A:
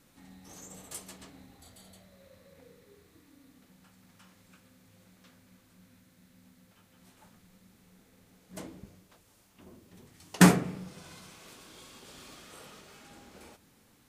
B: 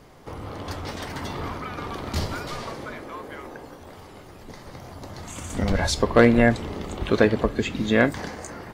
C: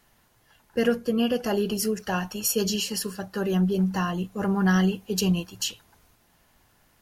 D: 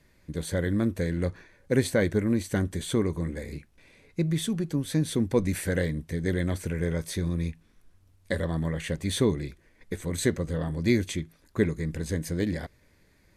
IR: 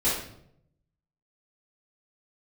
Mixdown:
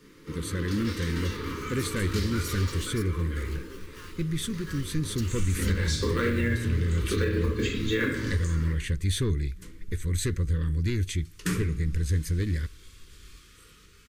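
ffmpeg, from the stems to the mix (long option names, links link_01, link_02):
-filter_complex "[0:a]adelay=1050,volume=-3.5dB,asplit=2[link_01][link_02];[link_02]volume=-22.5dB[link_03];[1:a]highpass=140,acrusher=bits=8:mode=log:mix=0:aa=0.000001,volume=-6.5dB,asplit=2[link_04][link_05];[link_05]volume=-7dB[link_06];[2:a]highpass=310,aeval=exprs='val(0)*gte(abs(val(0)),0.0335)':channel_layout=same,volume=-14.5dB[link_07];[3:a]asoftclip=type=tanh:threshold=-18dB,volume=0dB[link_08];[4:a]atrim=start_sample=2205[link_09];[link_03][link_06]amix=inputs=2:normalize=0[link_10];[link_10][link_09]afir=irnorm=-1:irlink=0[link_11];[link_01][link_04][link_07][link_08][link_11]amix=inputs=5:normalize=0,asubboost=boost=9:cutoff=67,asuperstop=centerf=720:order=4:qfactor=0.88,alimiter=limit=-16.5dB:level=0:latency=1:release=176"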